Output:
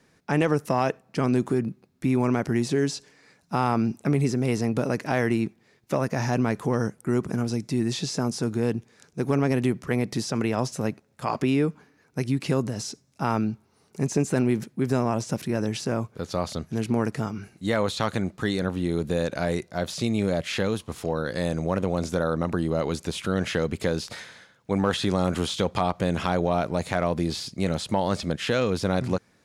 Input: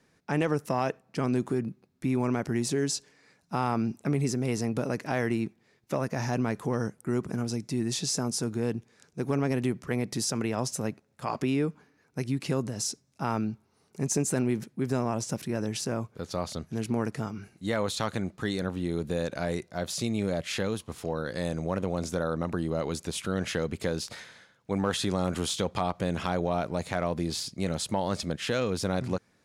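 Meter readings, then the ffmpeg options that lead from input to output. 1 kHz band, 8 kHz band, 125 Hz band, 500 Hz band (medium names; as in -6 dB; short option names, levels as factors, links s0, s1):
+4.5 dB, -3.0 dB, +4.5 dB, +4.5 dB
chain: -filter_complex "[0:a]acrossover=split=4400[s0][s1];[s1]acompressor=threshold=0.00794:ratio=4:attack=1:release=60[s2];[s0][s2]amix=inputs=2:normalize=0,volume=1.68"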